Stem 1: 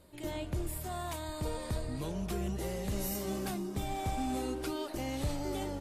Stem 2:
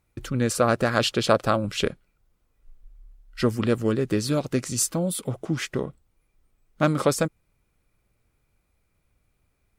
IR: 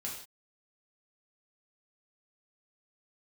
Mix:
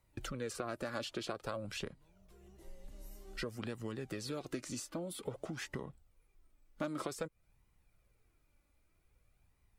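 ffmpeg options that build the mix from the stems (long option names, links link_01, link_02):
-filter_complex "[0:a]volume=-17dB[link_01];[1:a]acompressor=threshold=-30dB:ratio=4,volume=0dB,asplit=2[link_02][link_03];[link_03]apad=whole_len=255909[link_04];[link_01][link_04]sidechaincompress=threshold=-42dB:ratio=8:attack=23:release=716[link_05];[link_05][link_02]amix=inputs=2:normalize=0,acrossover=split=240|1400|3900[link_06][link_07][link_08][link_09];[link_06]acompressor=threshold=-42dB:ratio=4[link_10];[link_07]acompressor=threshold=-33dB:ratio=4[link_11];[link_08]acompressor=threshold=-43dB:ratio=4[link_12];[link_09]acompressor=threshold=-44dB:ratio=4[link_13];[link_10][link_11][link_12][link_13]amix=inputs=4:normalize=0,flanger=delay=1:depth=2.5:regen=42:speed=0.52:shape=sinusoidal"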